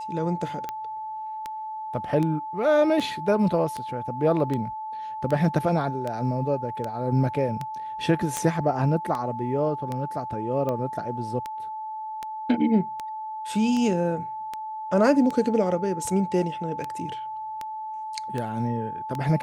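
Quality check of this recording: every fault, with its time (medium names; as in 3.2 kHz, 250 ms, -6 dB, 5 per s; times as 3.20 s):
tick 78 rpm -17 dBFS
whine 870 Hz -31 dBFS
8.37 s: pop -11 dBFS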